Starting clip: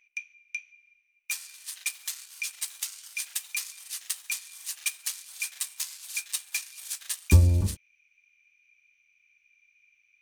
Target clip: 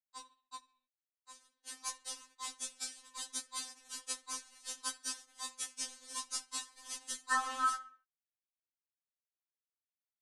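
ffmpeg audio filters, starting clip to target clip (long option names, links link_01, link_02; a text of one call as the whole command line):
ffmpeg -i in.wav -filter_complex "[0:a]bandreject=frequency=2300:width=9.6,acrusher=bits=5:mix=0:aa=0.000001,asplit=2[link_01][link_02];[link_02]adelay=66,lowpass=frequency=3300:poles=1,volume=-15.5dB,asplit=2[link_03][link_04];[link_04]adelay=66,lowpass=frequency=3300:poles=1,volume=0.48,asplit=2[link_05][link_06];[link_06]adelay=66,lowpass=frequency=3300:poles=1,volume=0.48,asplit=2[link_07][link_08];[link_08]adelay=66,lowpass=frequency=3300:poles=1,volume=0.48[link_09];[link_03][link_05][link_07][link_09]amix=inputs=4:normalize=0[link_10];[link_01][link_10]amix=inputs=2:normalize=0,flanger=delay=17.5:depth=3.3:speed=0.55,asettb=1/sr,asplit=3[link_11][link_12][link_13];[link_11]atrim=end=0.564[link_14];[link_12]atrim=start=0.56:end=1.64,asetpts=PTS-STARTPTS,afade=type=in:duration=0.004:curve=qsin,afade=type=out:start_time=1.076:duration=0.004:curve=qsin,acompressor=threshold=-52dB:ratio=4[link_15];[link_13]atrim=start=1.636[link_16];[link_14][link_15]acrossfade=duration=0.004:curve1=hsin:curve2=qsin[link_17];[link_17][link_16]acrossfade=duration=0.004:curve1=qsin:curve2=hsin,highpass=100,equalizer=frequency=380:width_type=q:width=4:gain=9,equalizer=frequency=3700:width_type=q:width=4:gain=-5,equalizer=frequency=7600:width_type=q:width=4:gain=6,lowpass=frequency=7700:width=0.5412,lowpass=frequency=7700:width=1.3066,aeval=exprs='val(0)*sin(2*PI*1400*n/s)':channel_layout=same,afftfilt=real='re*3.46*eq(mod(b,12),0)':imag='im*3.46*eq(mod(b,12),0)':win_size=2048:overlap=0.75,volume=2.5dB" out.wav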